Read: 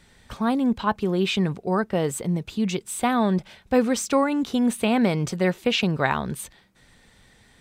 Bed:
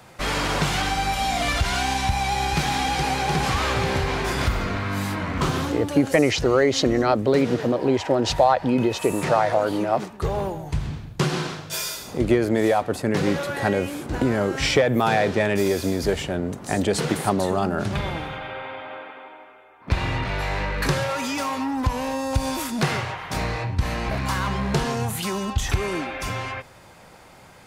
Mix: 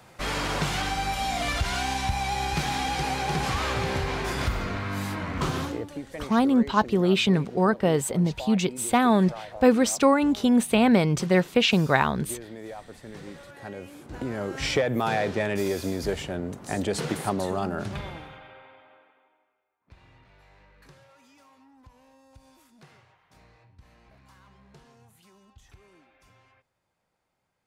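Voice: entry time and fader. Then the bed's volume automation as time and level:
5.90 s, +1.5 dB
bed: 5.64 s -4.5 dB
6.05 s -20 dB
13.44 s -20 dB
14.7 s -5.5 dB
17.74 s -5.5 dB
19.82 s -31 dB

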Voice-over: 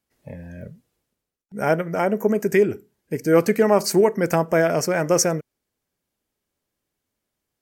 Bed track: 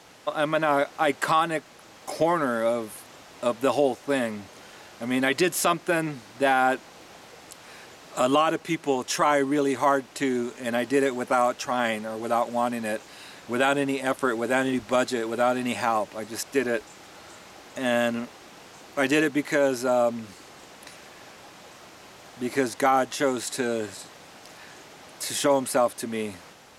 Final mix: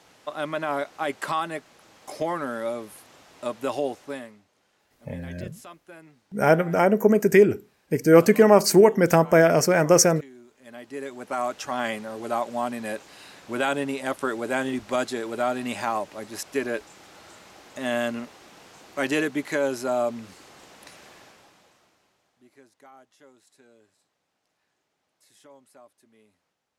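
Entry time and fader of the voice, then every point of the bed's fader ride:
4.80 s, +2.0 dB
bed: 4.02 s -5 dB
4.45 s -22 dB
10.43 s -22 dB
11.58 s -2.5 dB
21.14 s -2.5 dB
22.57 s -30 dB

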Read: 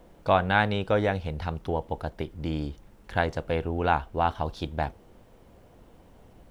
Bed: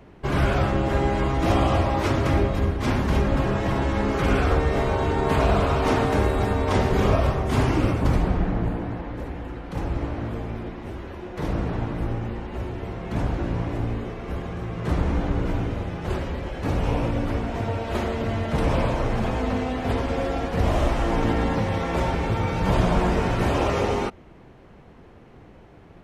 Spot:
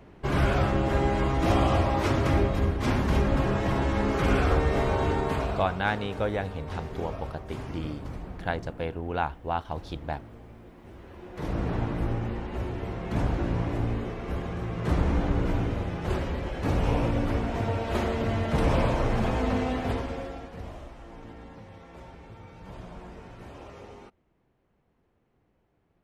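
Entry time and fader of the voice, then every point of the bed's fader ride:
5.30 s, -4.5 dB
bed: 5.12 s -2.5 dB
5.82 s -17 dB
10.61 s -17 dB
11.73 s -1.5 dB
19.75 s -1.5 dB
20.88 s -22.5 dB

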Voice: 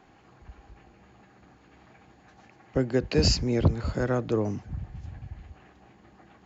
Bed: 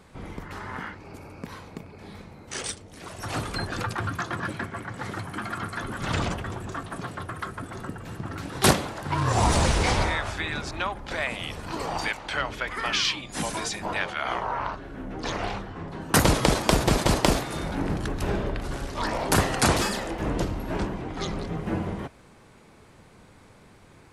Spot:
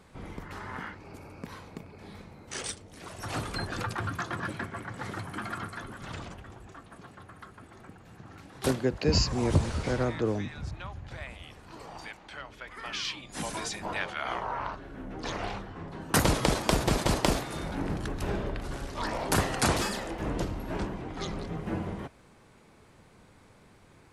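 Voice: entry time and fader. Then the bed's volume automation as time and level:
5.90 s, -2.5 dB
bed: 5.54 s -3.5 dB
6.24 s -14.5 dB
12.49 s -14.5 dB
13.54 s -4.5 dB

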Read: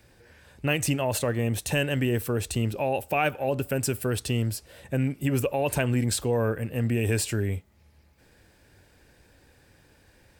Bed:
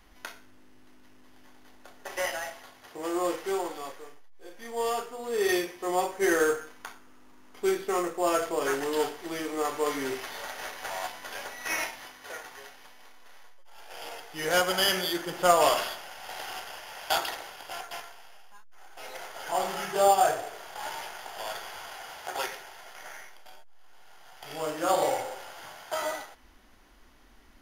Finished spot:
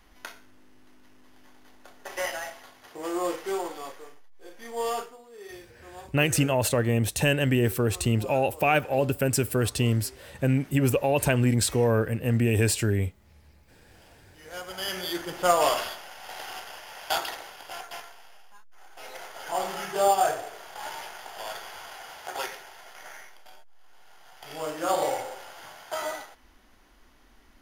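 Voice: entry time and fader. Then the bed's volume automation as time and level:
5.50 s, +2.5 dB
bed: 5.03 s 0 dB
5.29 s -18 dB
14.44 s -18 dB
15.15 s -0.5 dB

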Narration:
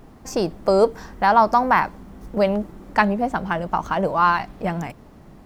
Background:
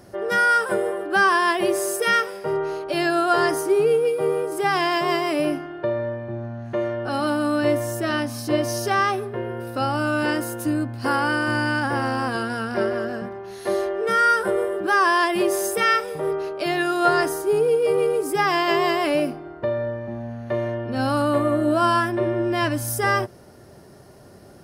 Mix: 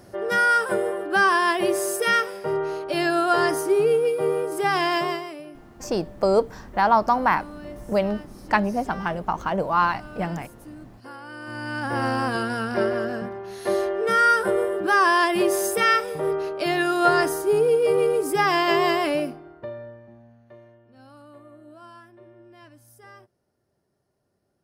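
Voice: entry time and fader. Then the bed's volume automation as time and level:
5.55 s, -3.0 dB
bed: 5.01 s -1 dB
5.45 s -19 dB
11.24 s -19 dB
12.04 s 0 dB
18.95 s 0 dB
20.81 s -27 dB

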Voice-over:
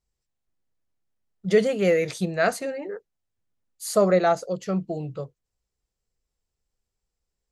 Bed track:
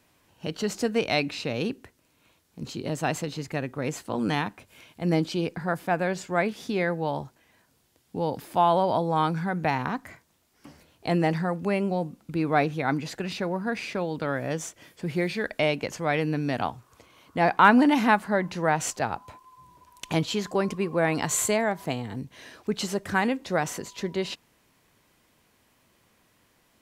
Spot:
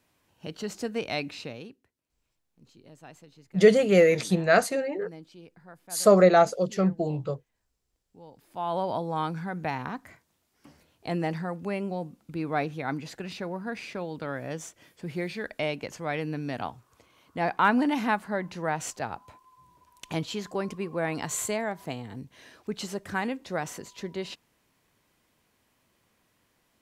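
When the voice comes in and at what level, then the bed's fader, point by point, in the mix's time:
2.10 s, +2.0 dB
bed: 1.43 s -6 dB
1.79 s -21.5 dB
8.34 s -21.5 dB
8.79 s -5.5 dB

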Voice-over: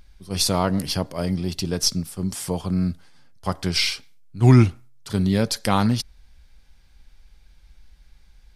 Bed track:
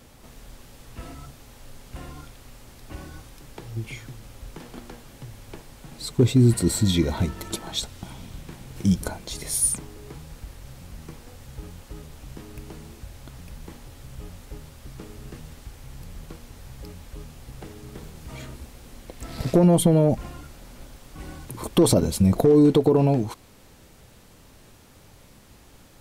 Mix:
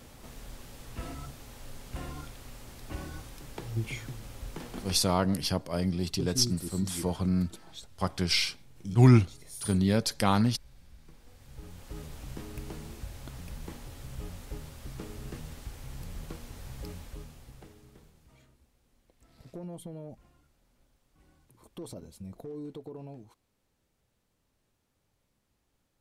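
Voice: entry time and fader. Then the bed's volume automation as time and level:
4.55 s, -5.0 dB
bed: 4.88 s -0.5 dB
5.17 s -18 dB
11.02 s -18 dB
12.01 s -1 dB
16.95 s -1 dB
18.55 s -25 dB

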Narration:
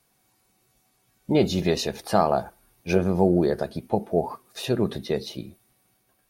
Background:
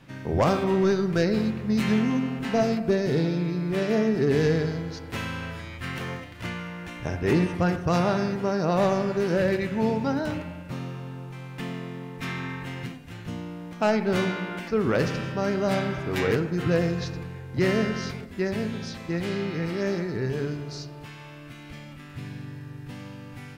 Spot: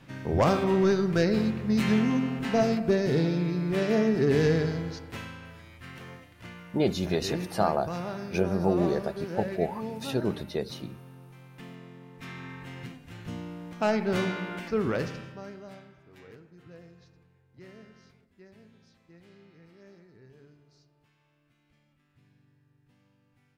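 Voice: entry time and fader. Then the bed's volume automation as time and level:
5.45 s, -5.0 dB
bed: 4.88 s -1 dB
5.39 s -11.5 dB
12 s -11.5 dB
13.33 s -3 dB
14.83 s -3 dB
15.94 s -26.5 dB

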